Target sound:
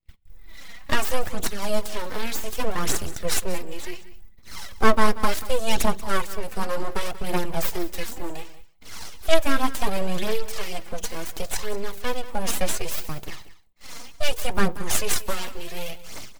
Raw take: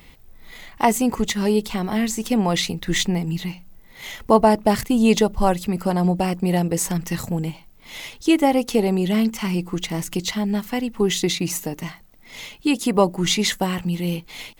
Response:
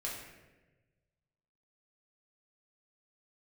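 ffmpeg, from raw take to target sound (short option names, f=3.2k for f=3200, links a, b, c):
-filter_complex "[0:a]agate=range=-42dB:threshold=-44dB:ratio=16:detection=peak,bass=f=250:g=2,treble=f=4k:g=-3,acrossover=split=180|1400[a][b][c];[a]acompressor=threshold=-41dB:ratio=6[d];[b]flanger=delay=7.8:depth=7.3:regen=-11:speed=0.25:shape=triangular[e];[d][e][c]amix=inputs=3:normalize=0,aeval=exprs='abs(val(0))':c=same,atempo=0.89,aphaser=in_gain=1:out_gain=1:delay=4.4:decay=0.49:speed=0.68:type=triangular,aecho=1:1:185:0.158,asplit=2[f][g];[1:a]atrim=start_sample=2205,asetrate=70560,aresample=44100[h];[g][h]afir=irnorm=-1:irlink=0,volume=-20.5dB[i];[f][i]amix=inputs=2:normalize=0,adynamicequalizer=threshold=0.01:dfrequency=4600:dqfactor=0.7:tfrequency=4600:tqfactor=0.7:attack=5:release=100:ratio=0.375:range=2:mode=boostabove:tftype=highshelf,volume=-1dB"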